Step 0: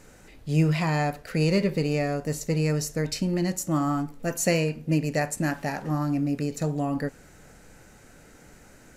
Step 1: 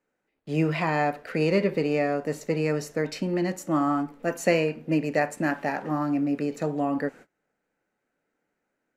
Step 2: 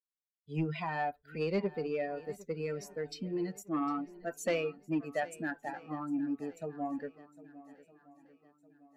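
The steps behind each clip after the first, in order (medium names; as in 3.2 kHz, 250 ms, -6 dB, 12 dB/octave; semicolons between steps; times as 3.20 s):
gate -44 dBFS, range -27 dB; three-band isolator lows -19 dB, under 200 Hz, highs -13 dB, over 3.2 kHz; trim +3 dB
expander on every frequency bin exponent 2; saturation -18.5 dBFS, distortion -19 dB; shuffle delay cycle 1259 ms, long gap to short 1.5:1, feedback 35%, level -19 dB; trim -4.5 dB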